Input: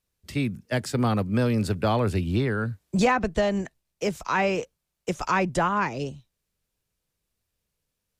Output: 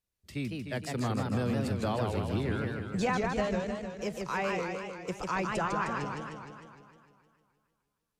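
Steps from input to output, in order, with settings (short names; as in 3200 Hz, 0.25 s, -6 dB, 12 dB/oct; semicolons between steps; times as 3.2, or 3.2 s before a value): warbling echo 0.153 s, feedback 63%, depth 210 cents, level -3.5 dB; gain -9 dB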